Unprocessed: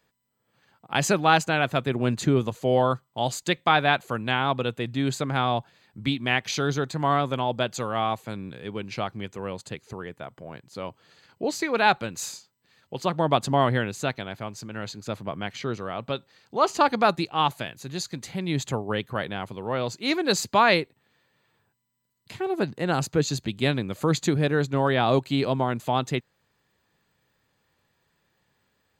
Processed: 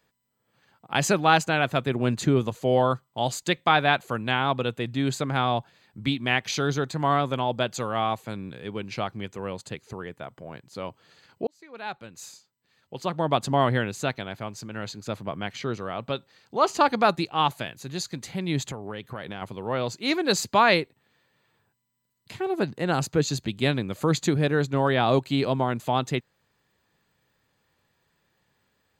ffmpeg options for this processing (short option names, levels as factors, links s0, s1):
-filter_complex "[0:a]asettb=1/sr,asplit=3[s0][s1][s2];[s0]atrim=end=18.674[s3];[s1]atrim=start=18.67:end=19.42,asetpts=PTS-STARTPTS,afade=t=in:d=0.004:c=qsin,afade=t=out:st=0.746:d=0.004:c=qsin,acompressor=threshold=0.0316:ratio=6:attack=3.2:release=140:knee=1:detection=peak[s4];[s2]atrim=start=19.416[s5];[s3][s4]acrossfade=d=0.004:c1=hsin:c2=qsin[s6];[s6][s5]acrossfade=d=0.004:c1=qsin:c2=hsin,asplit=2[s7][s8];[s7]atrim=end=11.47,asetpts=PTS-STARTPTS,afade=t=out:st=11.466:d=0.004:c=hsin[s9];[s8]atrim=start=11.47,asetpts=PTS-STARTPTS,afade=t=in:d=2.25[s10];[s9][s10]concat=n=2:v=0:a=1"